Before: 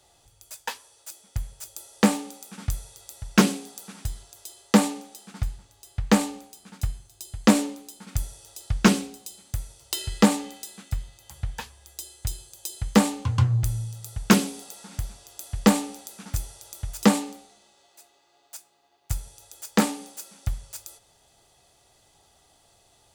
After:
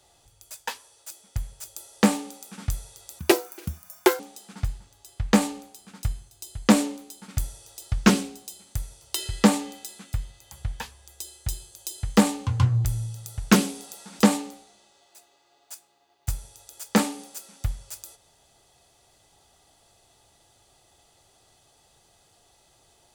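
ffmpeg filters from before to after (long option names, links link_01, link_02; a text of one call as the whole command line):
ffmpeg -i in.wav -filter_complex "[0:a]asplit=4[link_01][link_02][link_03][link_04];[link_01]atrim=end=3.194[link_05];[link_02]atrim=start=3.19:end=4.98,asetpts=PTS-STARTPTS,asetrate=78498,aresample=44100[link_06];[link_03]atrim=start=4.976:end=14.982[link_07];[link_04]atrim=start=17.018[link_08];[link_05][link_06]acrossfade=duration=0.004:curve1=hsin:curve2=hsin[link_09];[link_09][link_07]acrossfade=duration=0.004:curve1=hsin:curve2=hsin[link_10];[link_10][link_08]acrossfade=duration=0.004:curve1=hsin:curve2=hsin" out.wav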